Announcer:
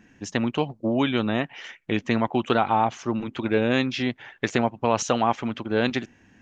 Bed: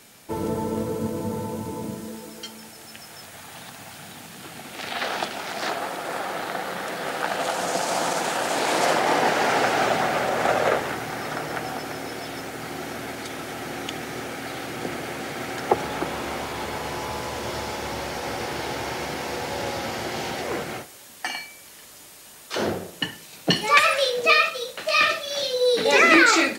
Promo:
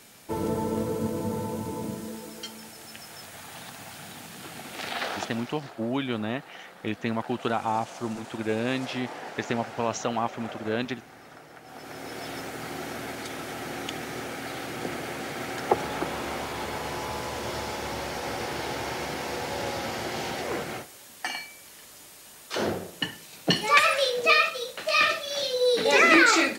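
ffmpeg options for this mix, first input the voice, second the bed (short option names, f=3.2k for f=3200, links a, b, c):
-filter_complex "[0:a]adelay=4950,volume=-6dB[a];[1:a]volume=14.5dB,afade=t=out:st=4.85:d=0.77:silence=0.141254,afade=t=in:st=11.64:d=0.65:silence=0.158489[b];[a][b]amix=inputs=2:normalize=0"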